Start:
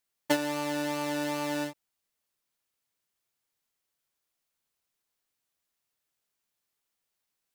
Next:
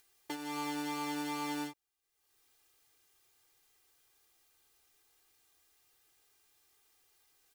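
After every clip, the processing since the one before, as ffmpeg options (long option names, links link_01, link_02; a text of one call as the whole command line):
ffmpeg -i in.wav -af "alimiter=limit=-21dB:level=0:latency=1:release=313,aecho=1:1:2.5:0.91,acompressor=mode=upward:threshold=-50dB:ratio=2.5,volume=-6dB" out.wav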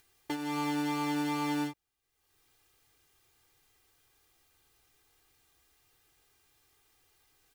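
ffmpeg -i in.wav -af "bass=frequency=250:gain=8,treble=frequency=4000:gain=-4,volume=4dB" out.wav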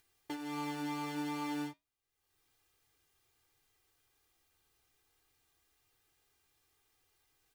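ffmpeg -i in.wav -af "flanger=delay=8.5:depth=4.2:regen=-74:speed=0.54:shape=triangular,volume=-2dB" out.wav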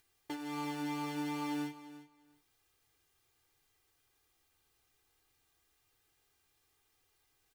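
ffmpeg -i in.wav -af "aecho=1:1:347|694:0.178|0.0302" out.wav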